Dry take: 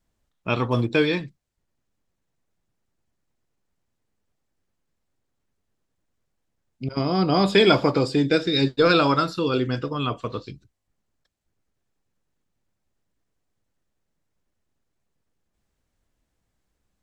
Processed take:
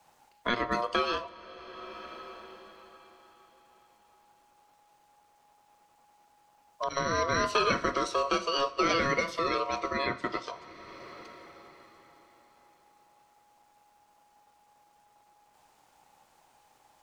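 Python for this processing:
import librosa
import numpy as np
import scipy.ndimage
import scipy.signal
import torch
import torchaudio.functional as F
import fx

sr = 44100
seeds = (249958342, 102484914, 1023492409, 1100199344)

y = fx.low_shelf(x, sr, hz=190.0, db=-5.5)
y = y * np.sin(2.0 * np.pi * 830.0 * np.arange(len(y)) / sr)
y = fx.rev_double_slope(y, sr, seeds[0], early_s=0.44, late_s=4.5, knee_db=-18, drr_db=14.5)
y = fx.band_squash(y, sr, depth_pct=70)
y = y * 10.0 ** (-4.0 / 20.0)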